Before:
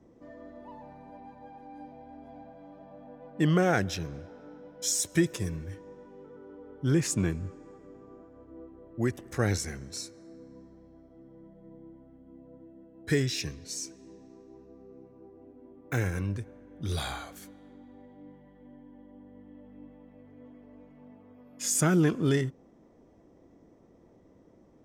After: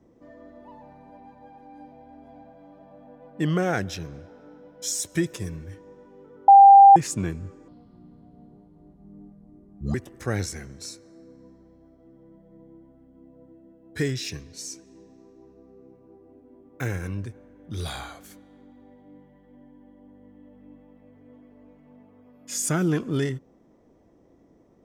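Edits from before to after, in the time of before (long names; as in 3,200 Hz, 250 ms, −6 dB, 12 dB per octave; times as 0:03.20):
0:06.48–0:06.96: beep over 793 Hz −6.5 dBFS
0:07.68–0:09.06: play speed 61%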